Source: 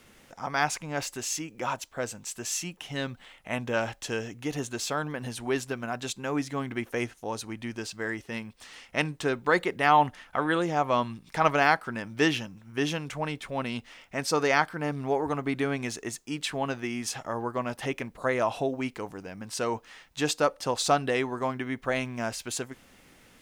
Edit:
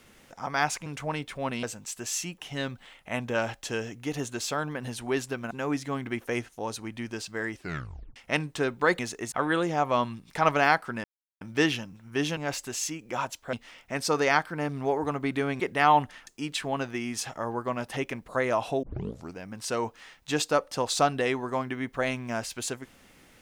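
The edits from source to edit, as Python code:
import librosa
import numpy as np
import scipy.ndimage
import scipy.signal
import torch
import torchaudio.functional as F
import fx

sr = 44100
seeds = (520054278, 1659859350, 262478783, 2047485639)

y = fx.edit(x, sr, fx.swap(start_s=0.86, length_s=1.16, other_s=12.99, other_length_s=0.77),
    fx.cut(start_s=5.9, length_s=0.26),
    fx.tape_stop(start_s=8.2, length_s=0.61),
    fx.swap(start_s=9.64, length_s=0.67, other_s=15.83, other_length_s=0.33),
    fx.insert_silence(at_s=12.03, length_s=0.37),
    fx.tape_start(start_s=18.72, length_s=0.52), tone=tone)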